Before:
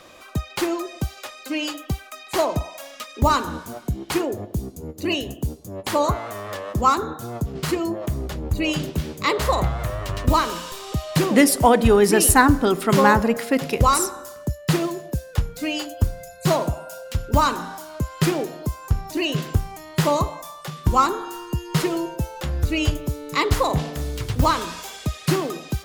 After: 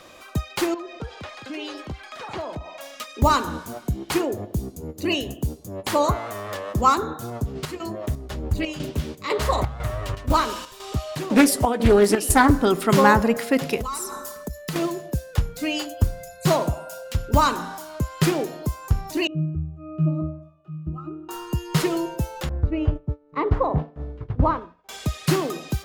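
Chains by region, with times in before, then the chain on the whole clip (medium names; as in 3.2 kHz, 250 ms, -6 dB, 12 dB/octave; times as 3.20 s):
0.74–2.81 s: low-pass 3.6 kHz + compression 2.5:1, threshold -33 dBFS + ever faster or slower copies 261 ms, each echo +5 st, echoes 2, each echo -6 dB
7.30–12.51 s: comb of notches 170 Hz + square tremolo 2 Hz, depth 60%, duty 70% + loudspeaker Doppler distortion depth 0.48 ms
13.78–14.76 s: treble shelf 8.5 kHz +4.5 dB + comb 4.6 ms, depth 75% + compression 8:1, threshold -26 dBFS
19.27–21.29 s: pitch-class resonator D#, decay 0.53 s + small resonant body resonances 210/330/1100/2900 Hz, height 10 dB, ringing for 20 ms
22.49–24.89 s: expander -22 dBFS + low-pass 1.1 kHz
whole clip: none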